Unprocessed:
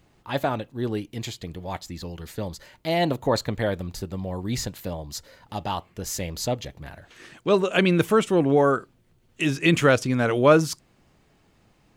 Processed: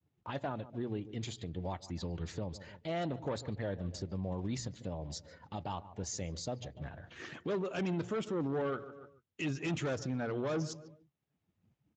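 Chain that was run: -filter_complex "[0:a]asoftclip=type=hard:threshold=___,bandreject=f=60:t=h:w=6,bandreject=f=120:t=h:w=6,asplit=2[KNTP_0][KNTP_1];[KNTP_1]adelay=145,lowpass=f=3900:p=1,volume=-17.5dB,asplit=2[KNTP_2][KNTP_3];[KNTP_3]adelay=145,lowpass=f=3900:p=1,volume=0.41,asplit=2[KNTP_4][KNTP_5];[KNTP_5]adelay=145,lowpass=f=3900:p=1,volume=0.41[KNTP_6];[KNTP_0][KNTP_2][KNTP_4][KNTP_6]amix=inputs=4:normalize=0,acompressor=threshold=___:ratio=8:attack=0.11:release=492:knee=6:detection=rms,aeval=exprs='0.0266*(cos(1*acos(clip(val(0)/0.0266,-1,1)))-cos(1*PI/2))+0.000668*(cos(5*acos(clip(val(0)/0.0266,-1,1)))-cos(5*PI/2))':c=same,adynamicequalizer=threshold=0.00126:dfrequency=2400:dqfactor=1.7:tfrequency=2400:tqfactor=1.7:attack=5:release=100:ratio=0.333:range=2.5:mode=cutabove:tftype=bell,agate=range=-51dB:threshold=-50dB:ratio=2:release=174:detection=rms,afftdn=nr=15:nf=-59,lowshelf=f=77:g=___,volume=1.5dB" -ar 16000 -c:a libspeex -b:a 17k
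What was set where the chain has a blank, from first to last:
-19dB, -34dB, 8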